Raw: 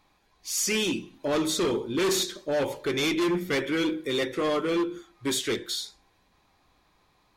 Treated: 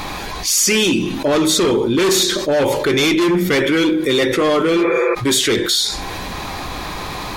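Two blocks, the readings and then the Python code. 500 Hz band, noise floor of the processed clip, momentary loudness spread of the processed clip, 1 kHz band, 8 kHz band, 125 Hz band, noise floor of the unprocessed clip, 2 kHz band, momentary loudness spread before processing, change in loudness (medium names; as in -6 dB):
+11.5 dB, -27 dBFS, 12 LU, +12.5 dB, +12.5 dB, +13.5 dB, -67 dBFS, +12.0 dB, 7 LU, +12.0 dB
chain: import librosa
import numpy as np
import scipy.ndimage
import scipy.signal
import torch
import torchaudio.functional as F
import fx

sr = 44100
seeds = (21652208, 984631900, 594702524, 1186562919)

y = fx.spec_repair(x, sr, seeds[0], start_s=4.8, length_s=0.32, low_hz=360.0, high_hz=2600.0, source='before')
y = fx.env_flatten(y, sr, amount_pct=70)
y = y * librosa.db_to_amplitude(9.0)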